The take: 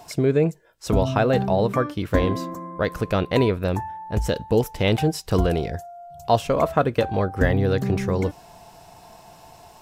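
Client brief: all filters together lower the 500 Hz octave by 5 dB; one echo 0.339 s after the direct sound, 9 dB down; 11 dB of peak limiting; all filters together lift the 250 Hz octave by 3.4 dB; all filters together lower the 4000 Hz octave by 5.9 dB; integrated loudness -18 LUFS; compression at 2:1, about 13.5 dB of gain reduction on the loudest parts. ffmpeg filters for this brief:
-af "equalizer=f=250:t=o:g=6.5,equalizer=f=500:t=o:g=-8,equalizer=f=4k:t=o:g=-8,acompressor=threshold=-39dB:ratio=2,alimiter=level_in=4.5dB:limit=-24dB:level=0:latency=1,volume=-4.5dB,aecho=1:1:339:0.355,volume=21dB"

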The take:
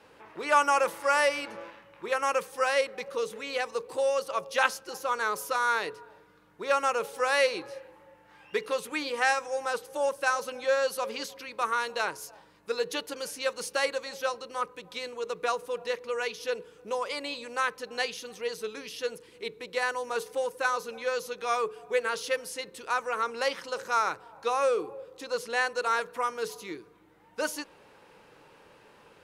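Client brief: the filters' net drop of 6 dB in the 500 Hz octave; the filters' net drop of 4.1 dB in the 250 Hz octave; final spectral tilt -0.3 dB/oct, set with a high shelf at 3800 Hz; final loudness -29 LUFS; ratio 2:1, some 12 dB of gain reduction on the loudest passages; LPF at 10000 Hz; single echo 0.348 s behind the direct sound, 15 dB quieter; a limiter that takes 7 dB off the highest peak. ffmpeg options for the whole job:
-af "lowpass=10k,equalizer=f=250:t=o:g=-3,equalizer=f=500:t=o:g=-6,highshelf=f=3.8k:g=6,acompressor=threshold=-41dB:ratio=2,alimiter=level_in=2.5dB:limit=-24dB:level=0:latency=1,volume=-2.5dB,aecho=1:1:348:0.178,volume=11dB"

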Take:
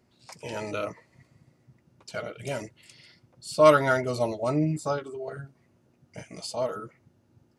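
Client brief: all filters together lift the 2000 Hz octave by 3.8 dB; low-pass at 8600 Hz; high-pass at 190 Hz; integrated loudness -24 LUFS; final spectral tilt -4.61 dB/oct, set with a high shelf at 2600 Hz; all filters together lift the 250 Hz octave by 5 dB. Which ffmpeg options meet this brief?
-af "highpass=190,lowpass=8.6k,equalizer=f=250:t=o:g=8,equalizer=f=2k:t=o:g=7,highshelf=f=2.6k:g=-3.5,volume=1dB"

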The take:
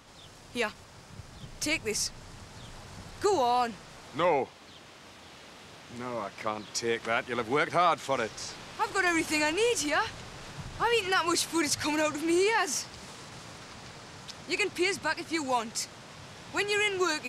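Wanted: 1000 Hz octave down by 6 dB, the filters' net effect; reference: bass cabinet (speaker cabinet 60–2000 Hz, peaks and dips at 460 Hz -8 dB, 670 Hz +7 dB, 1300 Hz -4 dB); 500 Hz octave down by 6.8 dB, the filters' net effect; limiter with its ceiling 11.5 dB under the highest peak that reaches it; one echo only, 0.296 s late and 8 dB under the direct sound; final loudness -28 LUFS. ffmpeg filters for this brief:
-af "equalizer=f=500:t=o:g=-6,equalizer=f=1k:t=o:g=-7.5,alimiter=level_in=4.5dB:limit=-24dB:level=0:latency=1,volume=-4.5dB,highpass=f=60:w=0.5412,highpass=f=60:w=1.3066,equalizer=f=460:t=q:w=4:g=-8,equalizer=f=670:t=q:w=4:g=7,equalizer=f=1.3k:t=q:w=4:g=-4,lowpass=f=2k:w=0.5412,lowpass=f=2k:w=1.3066,aecho=1:1:296:0.398,volume=14.5dB"

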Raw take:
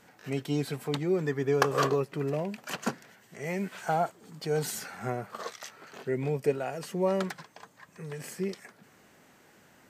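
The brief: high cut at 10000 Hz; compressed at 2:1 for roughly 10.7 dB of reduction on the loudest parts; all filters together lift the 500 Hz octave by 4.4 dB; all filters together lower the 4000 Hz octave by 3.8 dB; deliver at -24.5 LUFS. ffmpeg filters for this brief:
-af "lowpass=10k,equalizer=f=500:t=o:g=5.5,equalizer=f=4k:t=o:g=-5,acompressor=threshold=-36dB:ratio=2,volume=12dB"

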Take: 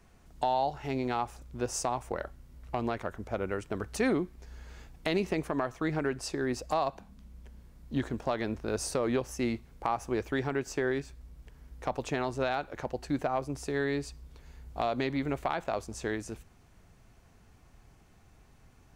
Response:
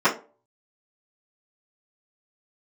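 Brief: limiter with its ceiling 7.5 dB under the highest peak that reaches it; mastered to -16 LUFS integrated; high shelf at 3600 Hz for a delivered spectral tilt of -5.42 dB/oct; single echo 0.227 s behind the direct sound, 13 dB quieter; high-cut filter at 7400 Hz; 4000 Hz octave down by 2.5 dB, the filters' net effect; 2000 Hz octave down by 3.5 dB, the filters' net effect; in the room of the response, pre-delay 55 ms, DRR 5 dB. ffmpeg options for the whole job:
-filter_complex "[0:a]lowpass=7.4k,equalizer=f=2k:t=o:g=-4.5,highshelf=f=3.6k:g=3,equalizer=f=4k:t=o:g=-3.5,alimiter=level_in=0.5dB:limit=-24dB:level=0:latency=1,volume=-0.5dB,aecho=1:1:227:0.224,asplit=2[a][b];[1:a]atrim=start_sample=2205,adelay=55[c];[b][c]afir=irnorm=-1:irlink=0,volume=-24.5dB[d];[a][d]amix=inputs=2:normalize=0,volume=19.5dB"

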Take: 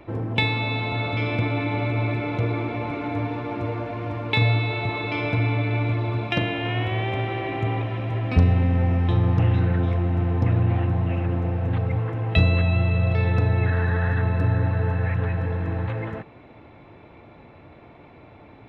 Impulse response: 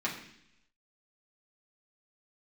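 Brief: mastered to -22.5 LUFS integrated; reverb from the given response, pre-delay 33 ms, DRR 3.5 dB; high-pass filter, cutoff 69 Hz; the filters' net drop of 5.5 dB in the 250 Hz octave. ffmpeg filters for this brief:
-filter_complex "[0:a]highpass=69,equalizer=f=250:t=o:g=-8.5,asplit=2[a][b];[1:a]atrim=start_sample=2205,adelay=33[c];[b][c]afir=irnorm=-1:irlink=0,volume=-10dB[d];[a][d]amix=inputs=2:normalize=0,volume=3.5dB"

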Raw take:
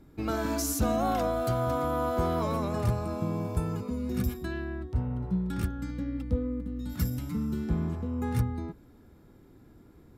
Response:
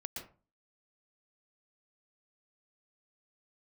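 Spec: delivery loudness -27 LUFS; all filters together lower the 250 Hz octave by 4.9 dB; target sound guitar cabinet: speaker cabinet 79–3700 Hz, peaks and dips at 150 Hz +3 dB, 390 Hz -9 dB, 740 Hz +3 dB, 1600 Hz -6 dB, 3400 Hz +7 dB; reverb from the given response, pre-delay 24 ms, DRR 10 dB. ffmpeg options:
-filter_complex "[0:a]equalizer=f=250:t=o:g=-6,asplit=2[a][b];[1:a]atrim=start_sample=2205,adelay=24[c];[b][c]afir=irnorm=-1:irlink=0,volume=-8.5dB[d];[a][d]amix=inputs=2:normalize=0,highpass=79,equalizer=f=150:t=q:w=4:g=3,equalizer=f=390:t=q:w=4:g=-9,equalizer=f=740:t=q:w=4:g=3,equalizer=f=1.6k:t=q:w=4:g=-6,equalizer=f=3.4k:t=q:w=4:g=7,lowpass=f=3.7k:w=0.5412,lowpass=f=3.7k:w=1.3066,volume=5dB"

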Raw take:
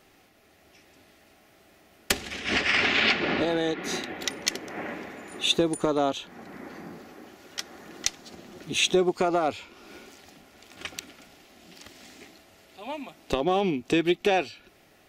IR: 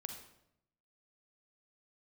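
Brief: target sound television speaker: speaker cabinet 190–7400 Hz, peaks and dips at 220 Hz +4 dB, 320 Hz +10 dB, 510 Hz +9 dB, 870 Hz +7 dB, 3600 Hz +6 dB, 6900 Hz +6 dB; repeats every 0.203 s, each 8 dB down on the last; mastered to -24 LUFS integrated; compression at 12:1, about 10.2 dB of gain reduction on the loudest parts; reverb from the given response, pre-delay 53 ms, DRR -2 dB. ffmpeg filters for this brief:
-filter_complex "[0:a]acompressor=threshold=-29dB:ratio=12,aecho=1:1:203|406|609|812|1015:0.398|0.159|0.0637|0.0255|0.0102,asplit=2[a][b];[1:a]atrim=start_sample=2205,adelay=53[c];[b][c]afir=irnorm=-1:irlink=0,volume=4.5dB[d];[a][d]amix=inputs=2:normalize=0,highpass=f=190:w=0.5412,highpass=f=190:w=1.3066,equalizer=f=220:t=q:w=4:g=4,equalizer=f=320:t=q:w=4:g=10,equalizer=f=510:t=q:w=4:g=9,equalizer=f=870:t=q:w=4:g=7,equalizer=f=3.6k:t=q:w=4:g=6,equalizer=f=6.9k:t=q:w=4:g=6,lowpass=f=7.4k:w=0.5412,lowpass=f=7.4k:w=1.3066,volume=2dB"

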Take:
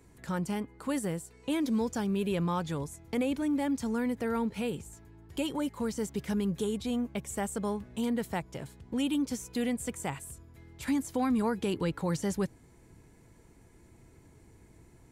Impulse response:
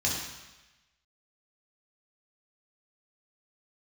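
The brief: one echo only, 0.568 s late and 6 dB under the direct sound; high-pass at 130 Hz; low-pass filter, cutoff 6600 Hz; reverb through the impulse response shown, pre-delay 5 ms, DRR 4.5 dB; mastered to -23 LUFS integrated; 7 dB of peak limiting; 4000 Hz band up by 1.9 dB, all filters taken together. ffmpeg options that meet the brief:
-filter_complex "[0:a]highpass=130,lowpass=6.6k,equalizer=f=4k:t=o:g=3,alimiter=level_in=1.5dB:limit=-24dB:level=0:latency=1,volume=-1.5dB,aecho=1:1:568:0.501,asplit=2[a][b];[1:a]atrim=start_sample=2205,adelay=5[c];[b][c]afir=irnorm=-1:irlink=0,volume=-13.5dB[d];[a][d]amix=inputs=2:normalize=0,volume=9.5dB"

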